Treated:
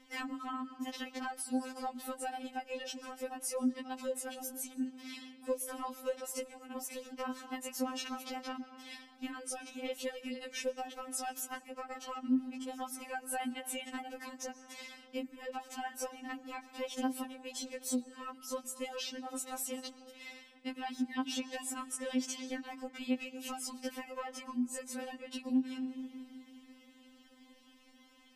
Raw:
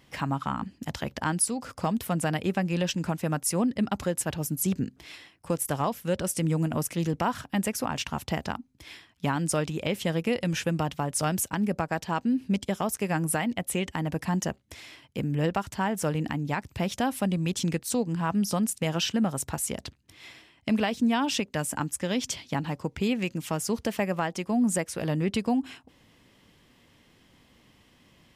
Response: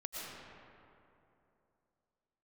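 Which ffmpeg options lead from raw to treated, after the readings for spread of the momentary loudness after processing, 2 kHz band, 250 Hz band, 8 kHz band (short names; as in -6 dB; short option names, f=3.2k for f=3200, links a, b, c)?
9 LU, -10.0 dB, -10.5 dB, -9.5 dB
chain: -filter_complex "[0:a]asplit=2[a][b];[1:a]atrim=start_sample=2205,lowpass=8.4k,highshelf=f=4.1k:g=7.5[c];[b][c]afir=irnorm=-1:irlink=0,volume=-16.5dB[d];[a][d]amix=inputs=2:normalize=0,acompressor=threshold=-30dB:ratio=16,afftfilt=real='re*3.46*eq(mod(b,12),0)':imag='im*3.46*eq(mod(b,12),0)':win_size=2048:overlap=0.75,volume=-1.5dB"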